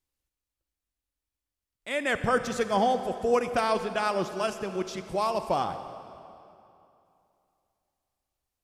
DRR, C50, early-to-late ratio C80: 9.5 dB, 9.5 dB, 10.5 dB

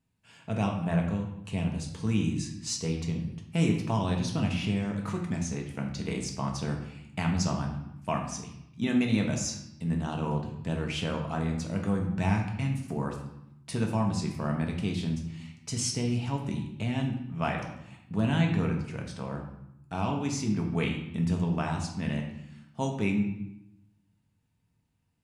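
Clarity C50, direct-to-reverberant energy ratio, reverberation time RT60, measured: 6.0 dB, 1.0 dB, 0.85 s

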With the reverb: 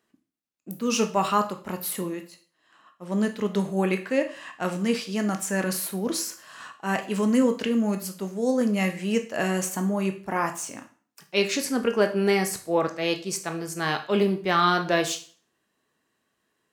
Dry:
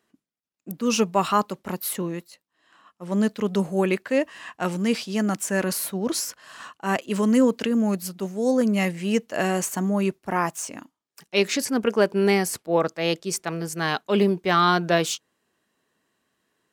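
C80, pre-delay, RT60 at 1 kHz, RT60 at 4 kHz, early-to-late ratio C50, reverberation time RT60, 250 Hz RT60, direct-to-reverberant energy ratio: 17.0 dB, 7 ms, 0.45 s, 0.40 s, 12.0 dB, 0.45 s, 0.45 s, 5.5 dB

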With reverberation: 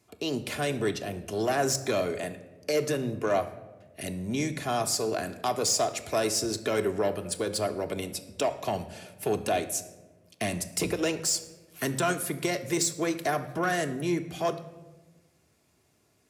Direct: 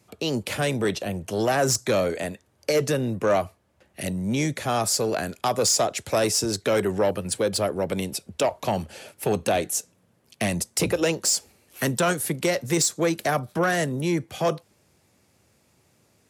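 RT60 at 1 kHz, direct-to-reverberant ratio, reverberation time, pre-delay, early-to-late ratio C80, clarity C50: 1.0 s, 6.0 dB, 1.2 s, 3 ms, 15.5 dB, 13.5 dB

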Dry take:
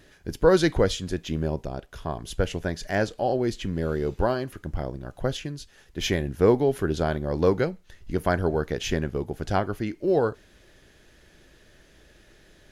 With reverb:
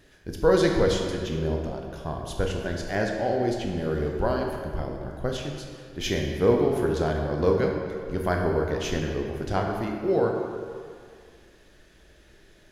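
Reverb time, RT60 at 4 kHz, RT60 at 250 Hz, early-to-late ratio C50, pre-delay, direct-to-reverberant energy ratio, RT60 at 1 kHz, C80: 2.2 s, 1.4 s, 2.1 s, 3.0 dB, 15 ms, 1.0 dB, 2.2 s, 4.0 dB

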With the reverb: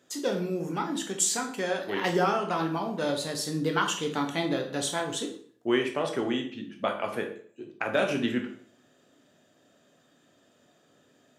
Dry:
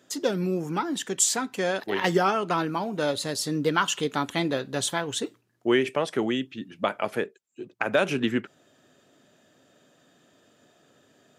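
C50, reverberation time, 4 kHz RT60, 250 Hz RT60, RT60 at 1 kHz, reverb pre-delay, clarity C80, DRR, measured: 8.5 dB, 0.55 s, 0.45 s, 0.55 s, 0.50 s, 12 ms, 12.0 dB, 2.5 dB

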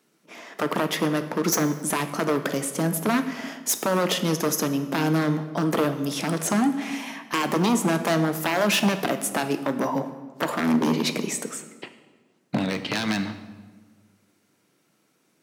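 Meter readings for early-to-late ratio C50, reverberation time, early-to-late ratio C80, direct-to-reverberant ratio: 11.0 dB, 1.4 s, 12.5 dB, 8.0 dB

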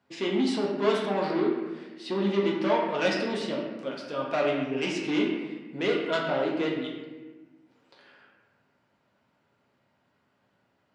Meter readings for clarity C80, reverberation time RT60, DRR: 4.5 dB, 1.3 s, -2.5 dB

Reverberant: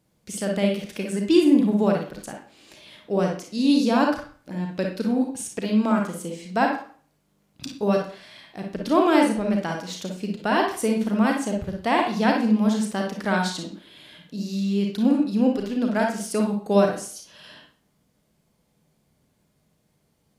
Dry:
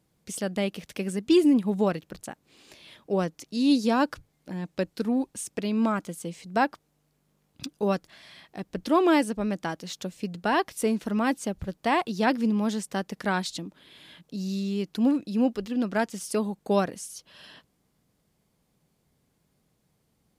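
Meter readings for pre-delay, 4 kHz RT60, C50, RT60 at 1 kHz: 33 ms, 0.40 s, 2.5 dB, 0.45 s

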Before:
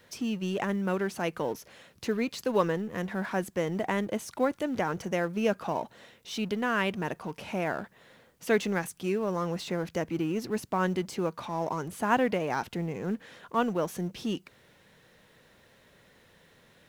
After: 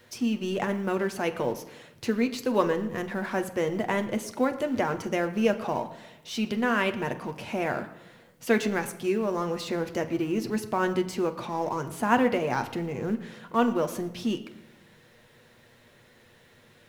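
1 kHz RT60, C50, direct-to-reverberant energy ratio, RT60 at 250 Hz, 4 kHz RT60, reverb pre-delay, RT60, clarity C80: 0.90 s, 13.5 dB, 6.0 dB, 1.3 s, 0.70 s, 8 ms, 1.0 s, 15.0 dB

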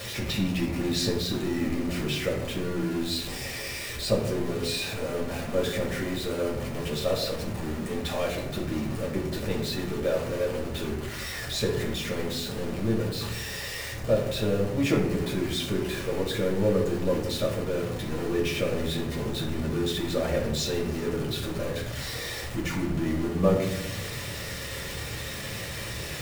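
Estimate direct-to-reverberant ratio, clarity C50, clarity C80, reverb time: -3.0 dB, 6.0 dB, 8.5 dB, 0.95 s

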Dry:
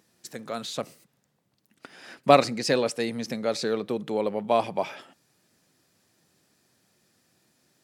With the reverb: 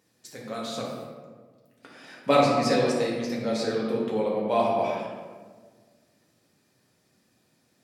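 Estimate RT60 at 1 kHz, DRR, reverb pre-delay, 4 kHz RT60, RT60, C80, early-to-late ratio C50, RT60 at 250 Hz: 1.3 s, -4.5 dB, 4 ms, 0.85 s, 1.5 s, 2.5 dB, 0.5 dB, 2.0 s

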